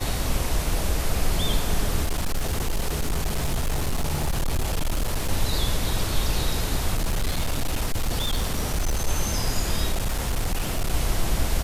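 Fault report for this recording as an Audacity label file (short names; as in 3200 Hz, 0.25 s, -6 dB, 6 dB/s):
2.030000	5.310000	clipped -20 dBFS
6.940000	9.080000	clipped -19.5 dBFS
9.920000	10.930000	clipped -20 dBFS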